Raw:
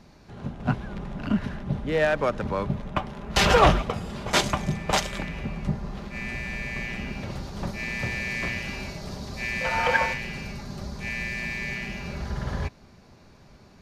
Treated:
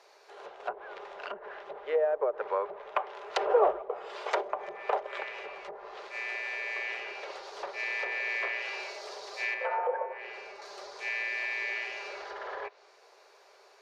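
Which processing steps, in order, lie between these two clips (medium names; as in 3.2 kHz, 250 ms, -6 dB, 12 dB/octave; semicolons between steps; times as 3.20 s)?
low-pass that closes with the level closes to 600 Hz, closed at -20 dBFS; elliptic high-pass 410 Hz, stop band 40 dB; 9.54–10.62 s: treble shelf 2.2 kHz -11 dB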